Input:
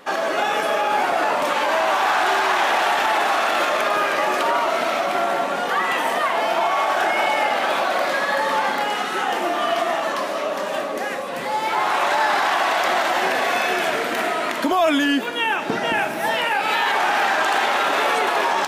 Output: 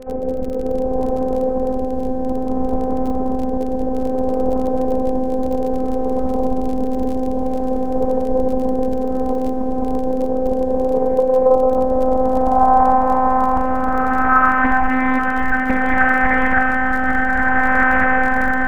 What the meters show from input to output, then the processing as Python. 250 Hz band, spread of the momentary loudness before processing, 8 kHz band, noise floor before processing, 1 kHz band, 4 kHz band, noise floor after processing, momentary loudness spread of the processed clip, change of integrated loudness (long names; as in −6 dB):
+10.0 dB, 4 LU, below −15 dB, −26 dBFS, +0.5 dB, below −20 dB, −20 dBFS, 8 LU, +2.0 dB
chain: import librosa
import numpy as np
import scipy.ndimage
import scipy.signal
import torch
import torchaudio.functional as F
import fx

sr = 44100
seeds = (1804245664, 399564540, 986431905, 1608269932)

y = fx.delta_mod(x, sr, bps=16000, step_db=-33.0)
y = fx.low_shelf_res(y, sr, hz=180.0, db=9.0, q=3.0)
y = fx.rider(y, sr, range_db=10, speed_s=0.5)
y = fx.rotary(y, sr, hz=0.6)
y = fx.robotise(y, sr, hz=258.0)
y = fx.filter_sweep_lowpass(y, sr, from_hz=430.0, to_hz=1600.0, start_s=11.0, end_s=14.9, q=5.6)
y = fx.dmg_crackle(y, sr, seeds[0], per_s=33.0, level_db=-32.0)
y = fx.echo_diffused(y, sr, ms=734, feedback_pct=64, wet_db=-10.0)
y = fx.doppler_dist(y, sr, depth_ms=0.48)
y = y * librosa.db_to_amplitude(7.0)